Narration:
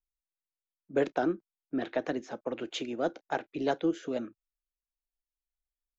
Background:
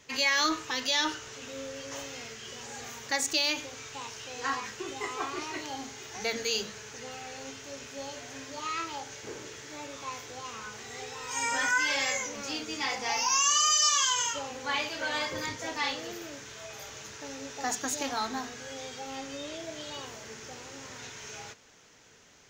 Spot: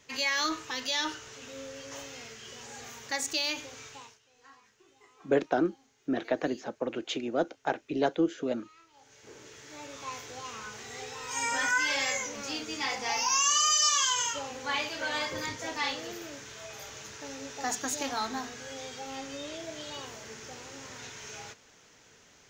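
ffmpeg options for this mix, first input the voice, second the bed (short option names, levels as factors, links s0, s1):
-filter_complex "[0:a]adelay=4350,volume=1.26[s0];[1:a]volume=11.2,afade=t=out:st=3.85:d=0.34:silence=0.0841395,afade=t=in:st=8.93:d=1.21:silence=0.0630957[s1];[s0][s1]amix=inputs=2:normalize=0"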